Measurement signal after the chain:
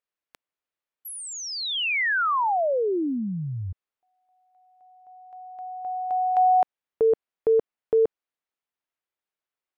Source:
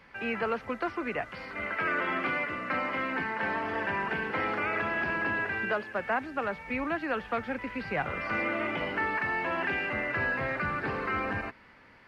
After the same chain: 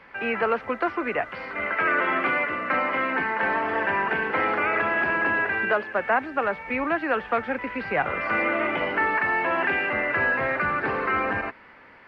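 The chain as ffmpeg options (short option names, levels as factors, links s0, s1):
-af "bass=f=250:g=-8,treble=f=4000:g=-14,volume=2.37"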